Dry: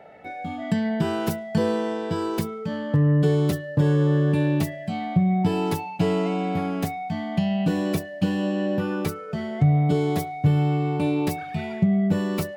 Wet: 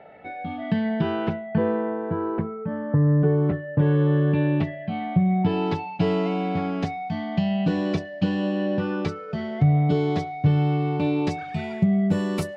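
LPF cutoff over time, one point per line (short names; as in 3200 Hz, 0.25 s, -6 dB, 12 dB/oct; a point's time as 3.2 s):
LPF 24 dB/oct
0.99 s 3800 Hz
1.97 s 1700 Hz
3.39 s 1700 Hz
3.98 s 3200 Hz
5.11 s 3200 Hz
6.1 s 5300 Hz
11.12 s 5300 Hz
11.92 s 11000 Hz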